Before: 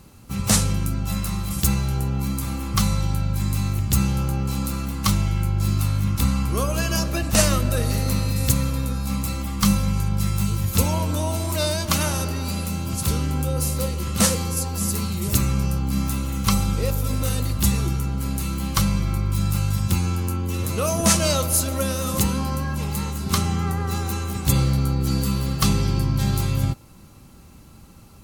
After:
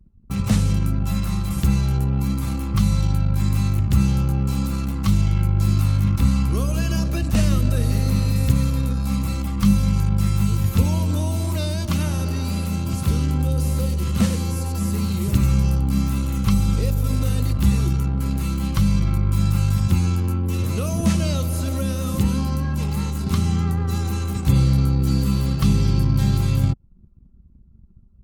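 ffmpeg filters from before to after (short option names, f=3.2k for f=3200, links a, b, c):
-filter_complex "[0:a]asettb=1/sr,asplit=3[a][b][c];[a]atrim=end=13.314[d];[b]atrim=start=13.31:end=15.86,asetpts=PTS-STARTPTS,afade=t=in:d=0.004:c=qsin,afade=t=out:st=2.546:d=0.004:c=qsin,aecho=1:1:92:0.266,atrim=end_sample=112455[e];[c]atrim=start=15.856[f];[d][e]acrossfade=d=0.004:c1=hsin:c2=qsin[g];[g][f]acrossfade=d=0.004:c1=qsin:c2=hsin,acrossover=split=320|3000[h][i][j];[i]acompressor=threshold=-40dB:ratio=3[k];[h][k][j]amix=inputs=3:normalize=0,anlmdn=2.51,acrossover=split=2800[l][m];[m]acompressor=threshold=-39dB:ratio=4:attack=1:release=60[n];[l][n]amix=inputs=2:normalize=0,volume=3.5dB"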